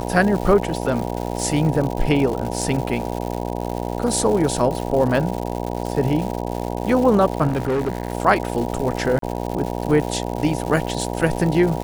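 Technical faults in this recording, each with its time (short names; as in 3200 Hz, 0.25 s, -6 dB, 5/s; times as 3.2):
buzz 60 Hz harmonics 16 -26 dBFS
crackle 240/s -26 dBFS
7.47–8.13 clipped -17.5 dBFS
9.19–9.22 gap 33 ms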